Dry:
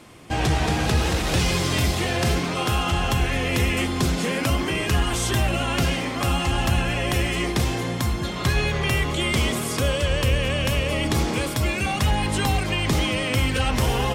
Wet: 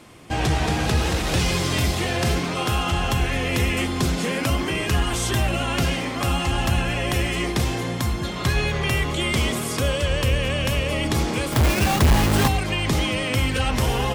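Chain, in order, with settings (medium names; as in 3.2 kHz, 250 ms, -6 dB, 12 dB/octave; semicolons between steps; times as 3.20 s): 11.52–12.48 s: square wave that keeps the level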